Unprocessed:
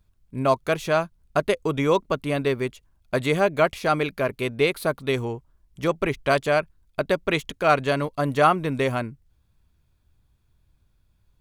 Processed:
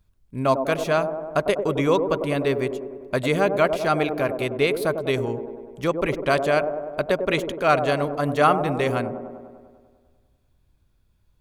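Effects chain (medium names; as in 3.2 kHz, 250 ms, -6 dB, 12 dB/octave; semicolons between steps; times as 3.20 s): feedback echo behind a band-pass 99 ms, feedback 67%, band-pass 410 Hz, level -5.5 dB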